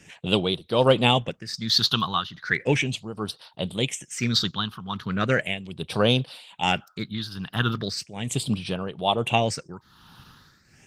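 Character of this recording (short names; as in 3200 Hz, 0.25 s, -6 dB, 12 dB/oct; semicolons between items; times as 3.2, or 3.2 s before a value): phasing stages 6, 0.37 Hz, lowest notch 570–2000 Hz; tremolo triangle 1.2 Hz, depth 80%; Opus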